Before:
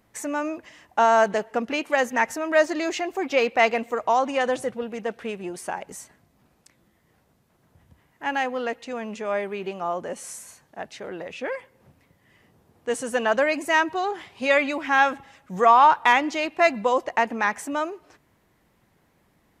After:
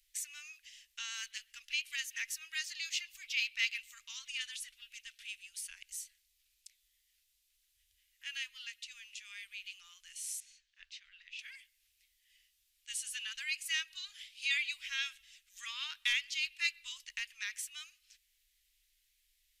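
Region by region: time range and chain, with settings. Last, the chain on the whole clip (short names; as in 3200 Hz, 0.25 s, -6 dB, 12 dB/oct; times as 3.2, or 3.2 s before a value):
10.4–11.39 air absorption 150 m + de-hum 89.49 Hz, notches 18
whole clip: inverse Chebyshev band-stop 130–750 Hz, stop band 70 dB; dynamic EQ 7000 Hz, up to -4 dB, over -50 dBFS, Q 1.5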